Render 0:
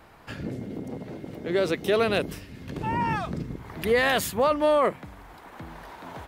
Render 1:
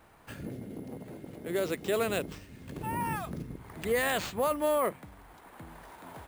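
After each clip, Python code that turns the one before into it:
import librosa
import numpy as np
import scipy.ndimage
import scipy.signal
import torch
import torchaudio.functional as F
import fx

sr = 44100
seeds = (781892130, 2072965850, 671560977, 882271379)

y = fx.sample_hold(x, sr, seeds[0], rate_hz=11000.0, jitter_pct=0)
y = y * librosa.db_to_amplitude(-6.5)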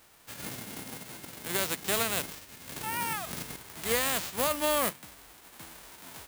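y = fx.envelope_flatten(x, sr, power=0.3)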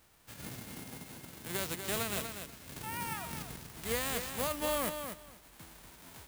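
y = fx.low_shelf(x, sr, hz=180.0, db=9.5)
y = fx.echo_feedback(y, sr, ms=242, feedback_pct=17, wet_db=-7.5)
y = y * librosa.db_to_amplitude(-7.0)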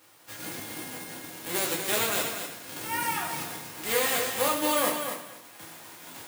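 y = scipy.signal.sosfilt(scipy.signal.butter(2, 230.0, 'highpass', fs=sr, output='sos'), x)
y = fx.rev_fdn(y, sr, rt60_s=0.66, lf_ratio=0.8, hf_ratio=0.85, size_ms=57.0, drr_db=-2.5)
y = y * librosa.db_to_amplitude(5.0)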